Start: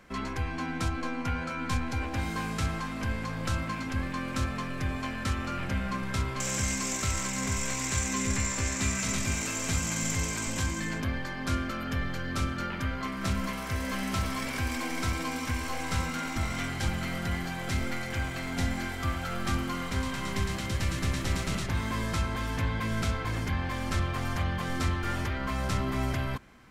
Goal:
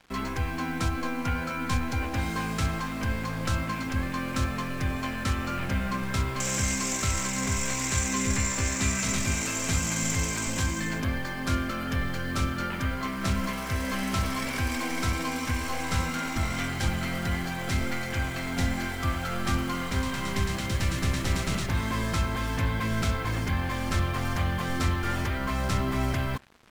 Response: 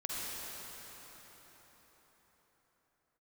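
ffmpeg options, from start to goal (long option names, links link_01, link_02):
-af "acrusher=bits=7:mix=0:aa=0.5,volume=2.5dB"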